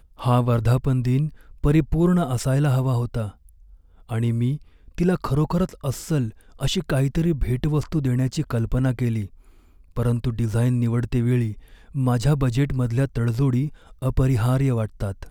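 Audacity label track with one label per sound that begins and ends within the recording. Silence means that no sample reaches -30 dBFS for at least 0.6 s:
4.110000	9.250000	sound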